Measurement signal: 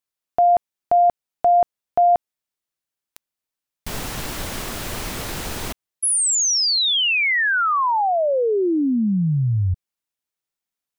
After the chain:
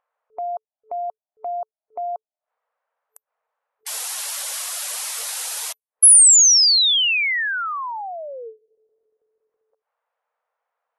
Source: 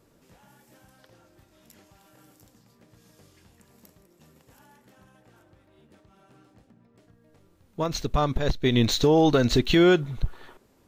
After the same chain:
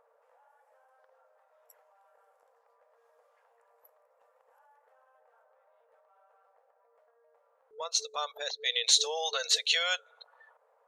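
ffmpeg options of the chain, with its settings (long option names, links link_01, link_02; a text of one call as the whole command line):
ffmpeg -i in.wav -filter_complex "[0:a]aderivative,afftdn=noise_reduction=33:noise_floor=-48,afftfilt=real='re*between(b*sr/4096,440,12000)':imag='im*between(b*sr/4096,440,12000)':win_size=4096:overlap=0.75,acrossover=split=1100[link_01][link_02];[link_01]acompressor=mode=upward:threshold=-41dB:ratio=2.5:attack=6.4:release=98:knee=2.83:detection=peak[link_03];[link_03][link_02]amix=inputs=2:normalize=0,volume=8dB" out.wav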